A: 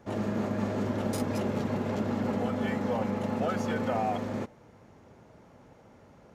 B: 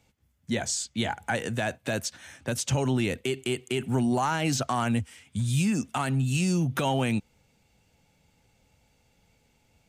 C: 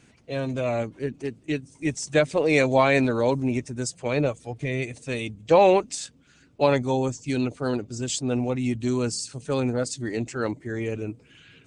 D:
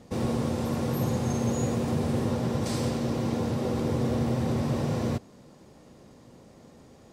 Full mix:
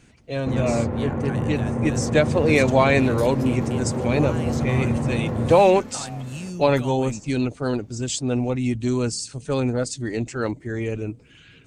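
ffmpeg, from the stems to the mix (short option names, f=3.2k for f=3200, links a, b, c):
-filter_complex "[0:a]highshelf=f=2.3k:g=12,adelay=2050,volume=-11.5dB[a];[1:a]volume=-9dB[b];[2:a]volume=1.5dB[c];[3:a]lowpass=f=2.1k:w=0.5412,lowpass=f=2.1k:w=1.3066,adelay=350,volume=1.5dB[d];[a][b][c][d]amix=inputs=4:normalize=0,lowshelf=f=64:g=10.5"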